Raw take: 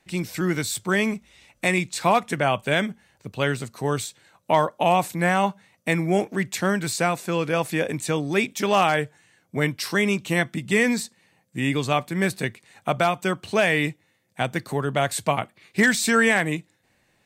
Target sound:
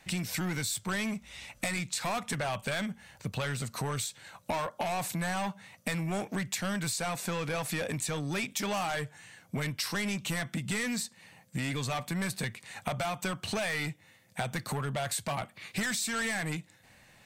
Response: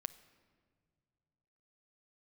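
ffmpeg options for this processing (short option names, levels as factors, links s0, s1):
-filter_complex "[0:a]equalizer=f=360:w=1.6:g=-8,acrossover=split=5000[s0][s1];[s0]asoftclip=type=tanh:threshold=0.0531[s2];[s2][s1]amix=inputs=2:normalize=0,acompressor=threshold=0.0112:ratio=6,volume=2.37"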